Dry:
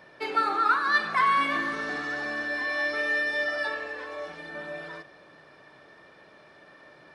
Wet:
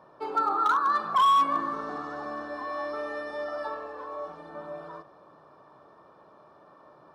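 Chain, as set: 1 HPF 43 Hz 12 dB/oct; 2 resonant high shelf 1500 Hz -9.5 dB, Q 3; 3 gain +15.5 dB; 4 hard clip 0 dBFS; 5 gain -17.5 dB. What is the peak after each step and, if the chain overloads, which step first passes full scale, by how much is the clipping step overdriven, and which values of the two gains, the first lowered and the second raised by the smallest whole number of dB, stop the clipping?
-11.5, -8.5, +7.0, 0.0, -17.5 dBFS; step 3, 7.0 dB; step 3 +8.5 dB, step 5 -10.5 dB

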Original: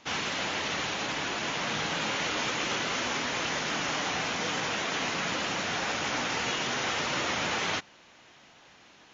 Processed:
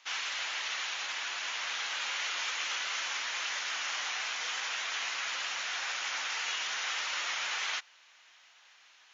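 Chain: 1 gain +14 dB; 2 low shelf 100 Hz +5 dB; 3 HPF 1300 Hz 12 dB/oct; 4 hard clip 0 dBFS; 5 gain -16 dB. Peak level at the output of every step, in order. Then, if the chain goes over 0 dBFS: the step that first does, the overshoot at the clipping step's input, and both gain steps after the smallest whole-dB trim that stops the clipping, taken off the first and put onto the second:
-2.5, -2.0, -5.5, -5.5, -21.5 dBFS; no overload

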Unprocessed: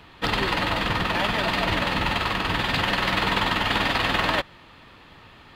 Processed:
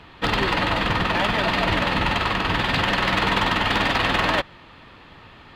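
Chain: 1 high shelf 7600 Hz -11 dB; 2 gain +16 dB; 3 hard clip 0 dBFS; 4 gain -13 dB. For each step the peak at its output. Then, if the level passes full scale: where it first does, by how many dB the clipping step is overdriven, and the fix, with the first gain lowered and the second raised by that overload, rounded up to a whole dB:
-8.5, +7.5, 0.0, -13.0 dBFS; step 2, 7.5 dB; step 2 +8 dB, step 4 -5 dB

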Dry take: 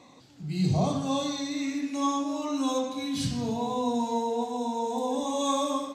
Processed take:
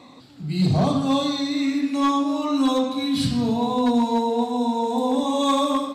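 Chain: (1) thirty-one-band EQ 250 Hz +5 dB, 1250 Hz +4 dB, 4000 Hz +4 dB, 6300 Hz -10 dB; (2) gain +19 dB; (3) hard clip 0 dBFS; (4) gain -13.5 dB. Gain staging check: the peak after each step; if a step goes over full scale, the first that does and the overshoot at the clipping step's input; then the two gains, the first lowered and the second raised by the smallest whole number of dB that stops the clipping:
-14.0, +5.0, 0.0, -13.5 dBFS; step 2, 5.0 dB; step 2 +14 dB, step 4 -8.5 dB

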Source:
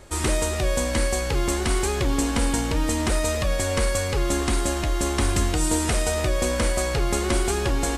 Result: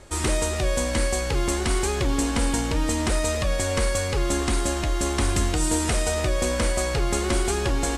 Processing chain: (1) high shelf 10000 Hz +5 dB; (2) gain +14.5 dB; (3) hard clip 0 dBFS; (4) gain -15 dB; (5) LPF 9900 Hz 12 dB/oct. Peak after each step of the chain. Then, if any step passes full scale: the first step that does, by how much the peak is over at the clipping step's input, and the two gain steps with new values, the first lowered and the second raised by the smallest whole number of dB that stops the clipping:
-10.5, +4.0, 0.0, -15.0, -14.0 dBFS; step 2, 4.0 dB; step 2 +10.5 dB, step 4 -11 dB

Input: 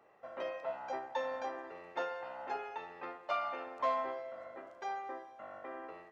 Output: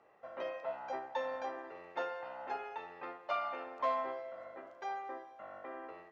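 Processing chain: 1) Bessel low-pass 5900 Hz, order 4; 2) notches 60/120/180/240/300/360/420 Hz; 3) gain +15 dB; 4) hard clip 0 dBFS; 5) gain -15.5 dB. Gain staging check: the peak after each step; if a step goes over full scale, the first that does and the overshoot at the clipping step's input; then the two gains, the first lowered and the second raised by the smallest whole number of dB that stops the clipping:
-21.0, -21.0, -6.0, -6.0, -21.5 dBFS; no overload

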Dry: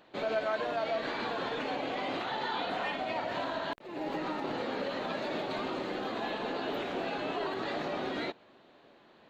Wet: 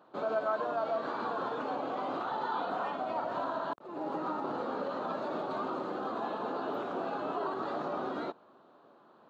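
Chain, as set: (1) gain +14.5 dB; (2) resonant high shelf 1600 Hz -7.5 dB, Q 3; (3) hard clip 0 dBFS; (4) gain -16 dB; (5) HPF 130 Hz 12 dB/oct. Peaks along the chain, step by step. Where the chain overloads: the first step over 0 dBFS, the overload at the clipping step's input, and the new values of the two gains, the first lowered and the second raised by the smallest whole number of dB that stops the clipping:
-5.0, -4.0, -4.0, -20.0, -20.5 dBFS; no overload

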